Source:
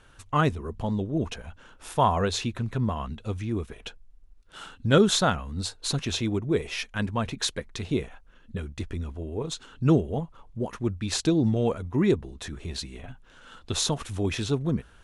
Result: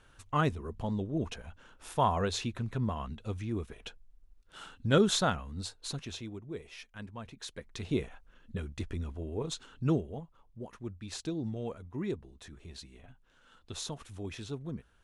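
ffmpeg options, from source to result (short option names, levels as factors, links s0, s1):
-af "volume=2.11,afade=t=out:st=5.26:d=1.08:silence=0.298538,afade=t=in:st=7.45:d=0.51:silence=0.251189,afade=t=out:st=9.52:d=0.69:silence=0.354813"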